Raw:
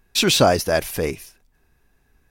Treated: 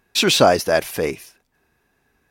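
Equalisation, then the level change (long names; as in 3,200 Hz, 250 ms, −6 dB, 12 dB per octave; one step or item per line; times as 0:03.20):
high-pass filter 230 Hz 6 dB per octave
high-shelf EQ 4,900 Hz −5 dB
+3.0 dB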